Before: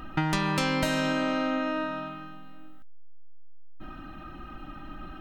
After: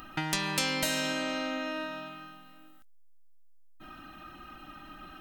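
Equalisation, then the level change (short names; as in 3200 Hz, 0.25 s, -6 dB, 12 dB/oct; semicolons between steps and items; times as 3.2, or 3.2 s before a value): high shelf 4300 Hz +5 dB; dynamic EQ 1200 Hz, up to -5 dB, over -42 dBFS, Q 2.4; tilt +2 dB/oct; -3.5 dB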